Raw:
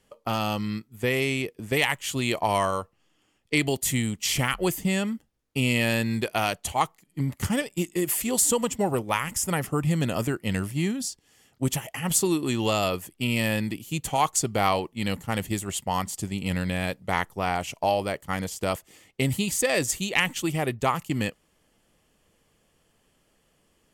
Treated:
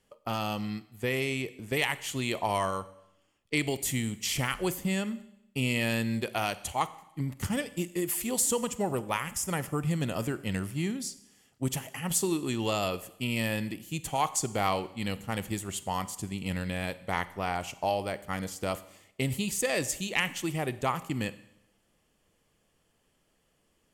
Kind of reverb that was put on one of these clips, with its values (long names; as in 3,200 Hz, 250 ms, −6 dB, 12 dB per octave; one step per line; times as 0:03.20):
four-comb reverb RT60 0.81 s, combs from 31 ms, DRR 15 dB
level −5 dB